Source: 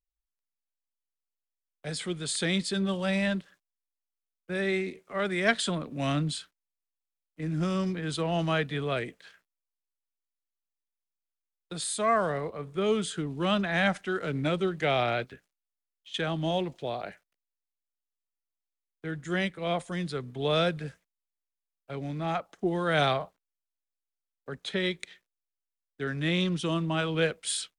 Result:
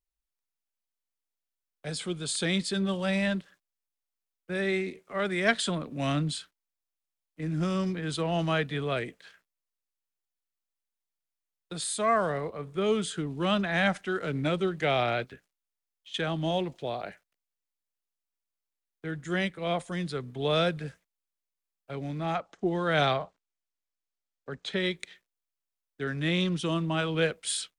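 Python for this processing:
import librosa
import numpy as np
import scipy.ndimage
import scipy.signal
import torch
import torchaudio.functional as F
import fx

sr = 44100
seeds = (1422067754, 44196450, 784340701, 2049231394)

y = fx.peak_eq(x, sr, hz=1900.0, db=-10.5, octaves=0.21, at=(1.9, 2.46))
y = fx.lowpass(y, sr, hz=8100.0, slope=24, at=(22.35, 24.73))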